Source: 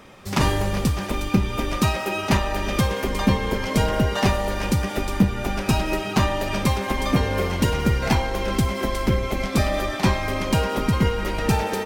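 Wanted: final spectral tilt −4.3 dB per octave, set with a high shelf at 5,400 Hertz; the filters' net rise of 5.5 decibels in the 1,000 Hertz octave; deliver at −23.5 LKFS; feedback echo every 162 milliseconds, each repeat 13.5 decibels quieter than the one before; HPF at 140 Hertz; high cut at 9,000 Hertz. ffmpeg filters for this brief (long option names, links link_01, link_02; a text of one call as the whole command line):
ffmpeg -i in.wav -af "highpass=140,lowpass=9000,equalizer=frequency=1000:width_type=o:gain=7,highshelf=frequency=5400:gain=-5.5,aecho=1:1:162|324:0.211|0.0444,volume=-1dB" out.wav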